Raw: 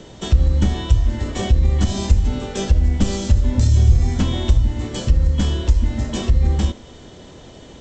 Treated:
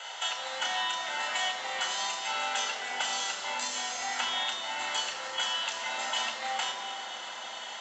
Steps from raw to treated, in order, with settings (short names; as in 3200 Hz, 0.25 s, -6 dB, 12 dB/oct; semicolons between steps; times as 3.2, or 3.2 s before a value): Chebyshev high-pass 910 Hz, order 3; compressor, threshold -37 dBFS, peak gain reduction 9 dB; reverb RT60 3.5 s, pre-delay 3 ms, DRR 2.5 dB